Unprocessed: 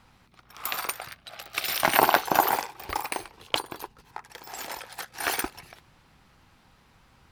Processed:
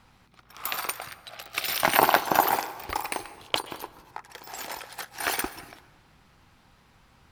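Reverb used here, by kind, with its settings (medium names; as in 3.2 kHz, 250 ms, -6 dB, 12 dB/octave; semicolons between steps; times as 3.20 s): plate-style reverb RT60 1.1 s, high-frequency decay 0.5×, pre-delay 115 ms, DRR 15 dB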